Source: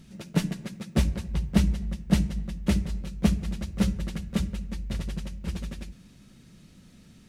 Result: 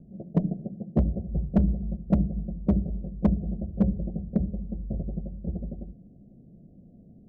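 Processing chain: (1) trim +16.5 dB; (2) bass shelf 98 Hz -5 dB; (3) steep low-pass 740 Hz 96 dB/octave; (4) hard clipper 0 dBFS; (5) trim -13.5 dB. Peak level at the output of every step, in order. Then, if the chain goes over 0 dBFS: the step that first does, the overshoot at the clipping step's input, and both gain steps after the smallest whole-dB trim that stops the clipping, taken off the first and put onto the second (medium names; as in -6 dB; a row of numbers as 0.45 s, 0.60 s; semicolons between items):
+8.5 dBFS, +7.5 dBFS, +7.5 dBFS, 0.0 dBFS, -13.5 dBFS; step 1, 7.5 dB; step 1 +8.5 dB, step 5 -5.5 dB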